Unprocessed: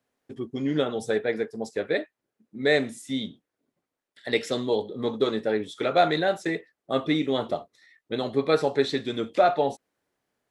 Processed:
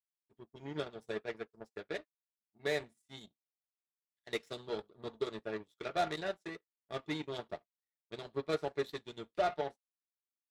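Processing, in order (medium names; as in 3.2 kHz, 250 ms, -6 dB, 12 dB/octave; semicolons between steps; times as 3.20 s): power-law waveshaper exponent 2; saturation -21 dBFS, distortion -10 dB; comb of notches 260 Hz; trim -1.5 dB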